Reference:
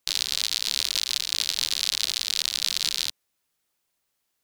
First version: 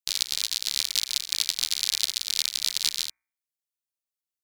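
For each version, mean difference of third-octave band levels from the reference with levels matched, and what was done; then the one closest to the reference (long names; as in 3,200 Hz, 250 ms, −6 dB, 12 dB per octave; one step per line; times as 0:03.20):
4.5 dB: high-shelf EQ 3,200 Hz +10 dB
hum removal 61.62 Hz, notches 39
expander for the loud parts 2.5 to 1, over −31 dBFS
level −2.5 dB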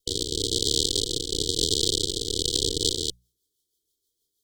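18.0 dB: lower of the sound and its delayed copy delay 2.4 ms
mains-hum notches 60/120/180 Hz
rotating-speaker cabinet horn 1 Hz, later 6.3 Hz, at 0:02.31
linear-phase brick-wall band-stop 500–3,000 Hz
level +5 dB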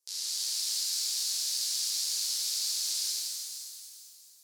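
7.5 dB: flat-topped bell 7,500 Hz +15.5 dB
brickwall limiter −3 dBFS, peak gain reduction 12.5 dB
four-pole ladder high-pass 330 Hz, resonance 50%
reverb with rising layers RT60 2.5 s, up +7 semitones, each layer −8 dB, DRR −10 dB
level −8.5 dB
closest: first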